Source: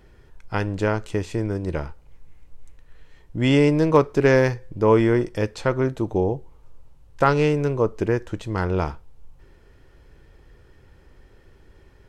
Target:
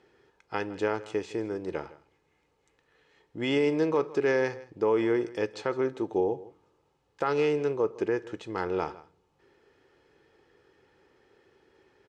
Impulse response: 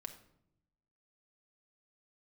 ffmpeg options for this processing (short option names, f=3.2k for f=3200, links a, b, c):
-filter_complex "[0:a]aecho=1:1:2.4:0.34,alimiter=limit=-11dB:level=0:latency=1:release=66,highpass=230,lowpass=6.6k,aecho=1:1:160:0.112,asplit=2[a][b];[1:a]atrim=start_sample=2205[c];[b][c]afir=irnorm=-1:irlink=0,volume=-11dB[d];[a][d]amix=inputs=2:normalize=0,volume=-6.5dB"